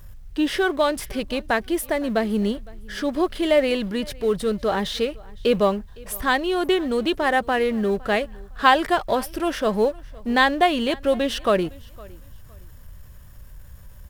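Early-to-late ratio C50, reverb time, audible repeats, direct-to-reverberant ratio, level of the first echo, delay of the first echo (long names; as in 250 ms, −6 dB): no reverb audible, no reverb audible, 1, no reverb audible, −24.0 dB, 510 ms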